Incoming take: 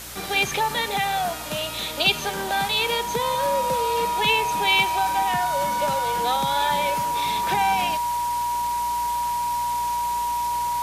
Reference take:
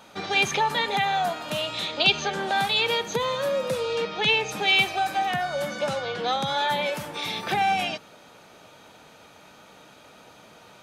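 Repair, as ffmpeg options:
-af "adeclick=t=4,bandreject=f=59.2:t=h:w=4,bandreject=f=118.4:t=h:w=4,bandreject=f=177.6:t=h:w=4,bandreject=f=236.8:t=h:w=4,bandreject=f=960:w=30,afwtdn=0.016"

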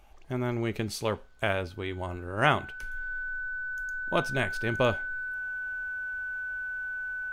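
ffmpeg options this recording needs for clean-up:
-af "bandreject=f=1500:w=30"

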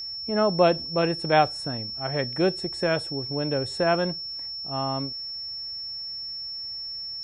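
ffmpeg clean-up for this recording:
-af "bandreject=f=5400:w=30"

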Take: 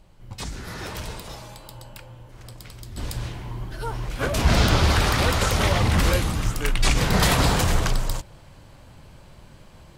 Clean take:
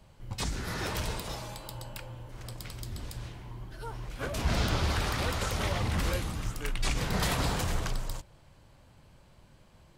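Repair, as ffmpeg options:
-af "agate=range=0.0891:threshold=0.0112,asetnsamples=n=441:p=0,asendcmd='2.97 volume volume -10dB',volume=1"

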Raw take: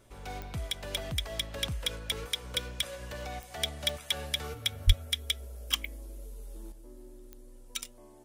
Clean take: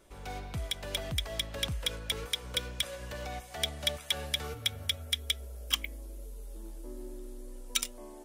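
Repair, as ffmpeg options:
-filter_complex "[0:a]adeclick=t=4,bandreject=f=115.9:t=h:w=4,bandreject=f=231.8:t=h:w=4,bandreject=f=347.7:t=h:w=4,asplit=3[s0][s1][s2];[s0]afade=t=out:st=4.86:d=0.02[s3];[s1]highpass=f=140:w=0.5412,highpass=f=140:w=1.3066,afade=t=in:st=4.86:d=0.02,afade=t=out:st=4.98:d=0.02[s4];[s2]afade=t=in:st=4.98:d=0.02[s5];[s3][s4][s5]amix=inputs=3:normalize=0,asetnsamples=n=441:p=0,asendcmd='6.72 volume volume 7dB',volume=1"

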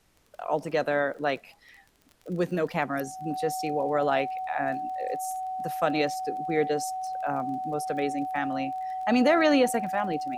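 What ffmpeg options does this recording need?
-af "adeclick=t=4,bandreject=f=750:w=30,agate=range=0.0891:threshold=0.00562"

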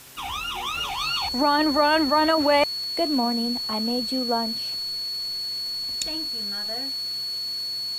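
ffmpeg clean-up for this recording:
-af "adeclick=t=4,bandreject=f=130.6:t=h:w=4,bandreject=f=261.2:t=h:w=4,bandreject=f=391.8:t=h:w=4,bandreject=f=522.4:t=h:w=4,bandreject=f=4400:w=30,afwtdn=0.0056"

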